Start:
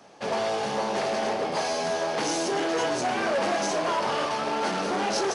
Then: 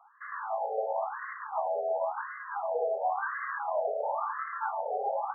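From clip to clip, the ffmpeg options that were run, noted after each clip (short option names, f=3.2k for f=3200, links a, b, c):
-af "afftfilt=real='re*between(b*sr/1024,570*pow(1500/570,0.5+0.5*sin(2*PI*0.95*pts/sr))/1.41,570*pow(1500/570,0.5+0.5*sin(2*PI*0.95*pts/sr))*1.41)':imag='im*between(b*sr/1024,570*pow(1500/570,0.5+0.5*sin(2*PI*0.95*pts/sr))/1.41,570*pow(1500/570,0.5+0.5*sin(2*PI*0.95*pts/sr))*1.41)':win_size=1024:overlap=0.75,volume=-1dB"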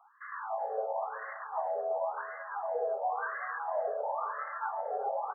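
-filter_complex "[0:a]asplit=2[a][b];[b]adelay=377,lowpass=f=990:p=1,volume=-13.5dB,asplit=2[c][d];[d]adelay=377,lowpass=f=990:p=1,volume=0.23,asplit=2[e][f];[f]adelay=377,lowpass=f=990:p=1,volume=0.23[g];[a][c][e][g]amix=inputs=4:normalize=0,volume=-2.5dB"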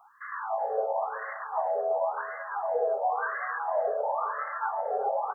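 -af "bass=f=250:g=14,treble=f=4k:g=6,volume=4.5dB"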